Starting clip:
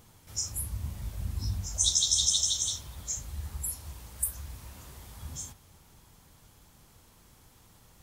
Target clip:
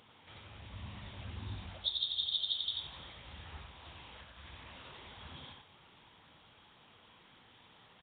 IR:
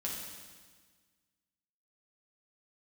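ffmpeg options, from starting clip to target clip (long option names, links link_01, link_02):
-filter_complex "[0:a]highpass=frequency=380:poles=1,highshelf=frequency=2600:gain=10.5,acompressor=threshold=-25dB:ratio=3,asplit=2[link_01][link_02];[link_02]aecho=0:1:89:0.708[link_03];[link_01][link_03]amix=inputs=2:normalize=0" -ar 8000 -c:a nellymoser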